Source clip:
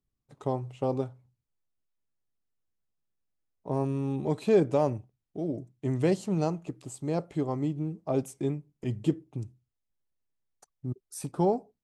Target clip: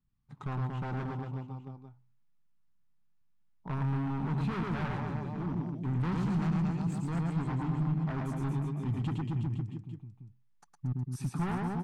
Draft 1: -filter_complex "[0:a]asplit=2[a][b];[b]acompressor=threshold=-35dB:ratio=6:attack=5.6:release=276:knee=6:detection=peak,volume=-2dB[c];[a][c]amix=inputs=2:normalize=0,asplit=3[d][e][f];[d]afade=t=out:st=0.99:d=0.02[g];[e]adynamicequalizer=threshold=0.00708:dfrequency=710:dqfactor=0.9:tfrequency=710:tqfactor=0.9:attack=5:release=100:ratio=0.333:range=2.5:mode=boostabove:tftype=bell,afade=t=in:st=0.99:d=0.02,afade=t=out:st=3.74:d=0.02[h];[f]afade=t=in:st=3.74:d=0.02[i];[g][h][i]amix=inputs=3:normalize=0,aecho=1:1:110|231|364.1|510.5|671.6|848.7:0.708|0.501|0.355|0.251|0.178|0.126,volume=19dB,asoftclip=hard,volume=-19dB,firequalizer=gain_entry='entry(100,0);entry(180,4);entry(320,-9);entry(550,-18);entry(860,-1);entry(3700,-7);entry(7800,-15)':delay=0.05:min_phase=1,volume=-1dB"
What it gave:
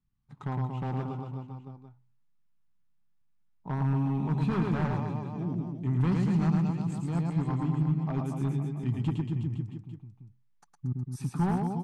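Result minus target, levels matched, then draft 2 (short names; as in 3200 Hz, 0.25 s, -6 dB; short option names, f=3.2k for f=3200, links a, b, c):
overloaded stage: distortion -7 dB
-filter_complex "[0:a]asplit=2[a][b];[b]acompressor=threshold=-35dB:ratio=6:attack=5.6:release=276:knee=6:detection=peak,volume=-2dB[c];[a][c]amix=inputs=2:normalize=0,asplit=3[d][e][f];[d]afade=t=out:st=0.99:d=0.02[g];[e]adynamicequalizer=threshold=0.00708:dfrequency=710:dqfactor=0.9:tfrequency=710:tqfactor=0.9:attack=5:release=100:ratio=0.333:range=2.5:mode=boostabove:tftype=bell,afade=t=in:st=0.99:d=0.02,afade=t=out:st=3.74:d=0.02[h];[f]afade=t=in:st=3.74:d=0.02[i];[g][h][i]amix=inputs=3:normalize=0,aecho=1:1:110|231|364.1|510.5|671.6|848.7:0.708|0.501|0.355|0.251|0.178|0.126,volume=26.5dB,asoftclip=hard,volume=-26.5dB,firequalizer=gain_entry='entry(100,0);entry(180,4);entry(320,-9);entry(550,-18);entry(860,-1);entry(3700,-7);entry(7800,-15)':delay=0.05:min_phase=1,volume=-1dB"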